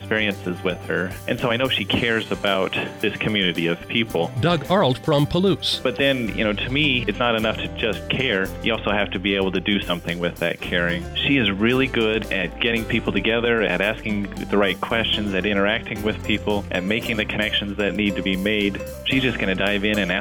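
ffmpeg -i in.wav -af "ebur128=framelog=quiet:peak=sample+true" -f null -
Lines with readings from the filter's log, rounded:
Integrated loudness:
  I:         -21.2 LUFS
  Threshold: -31.2 LUFS
Loudness range:
  LRA:         2.0 LU
  Threshold: -41.2 LUFS
  LRA low:   -22.1 LUFS
  LRA high:  -20.1 LUFS
Sample peak:
  Peak:       -8.4 dBFS
True peak:
  Peak:       -8.4 dBFS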